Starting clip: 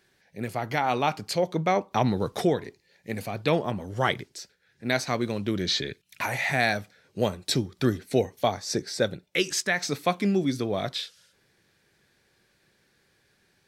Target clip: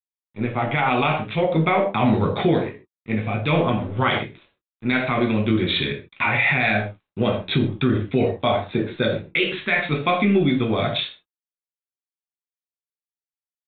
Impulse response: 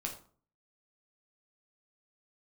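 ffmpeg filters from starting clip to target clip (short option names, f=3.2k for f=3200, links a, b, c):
-filter_complex "[0:a]adynamicequalizer=threshold=0.0112:dfrequency=2500:dqfactor=0.94:tfrequency=2500:tqfactor=0.94:attack=5:release=100:ratio=0.375:range=2.5:mode=boostabove:tftype=bell,aresample=8000,aeval=exprs='sgn(val(0))*max(abs(val(0))-0.00299,0)':c=same,aresample=44100[a];[1:a]atrim=start_sample=2205,afade=t=out:st=0.21:d=0.01,atrim=end_sample=9702[b];[a][b]afir=irnorm=-1:irlink=0,alimiter=level_in=15.5dB:limit=-1dB:release=50:level=0:latency=1,volume=-8.5dB"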